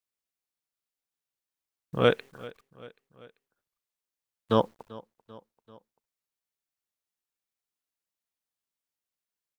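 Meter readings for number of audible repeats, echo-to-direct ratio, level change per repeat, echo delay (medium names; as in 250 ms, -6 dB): 3, -19.0 dB, -4.5 dB, 390 ms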